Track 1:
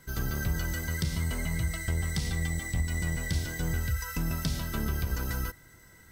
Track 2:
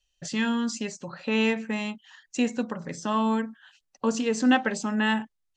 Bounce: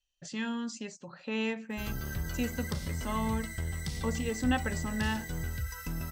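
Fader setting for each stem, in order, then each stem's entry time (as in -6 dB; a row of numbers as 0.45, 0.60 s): -5.5, -8.5 dB; 1.70, 0.00 s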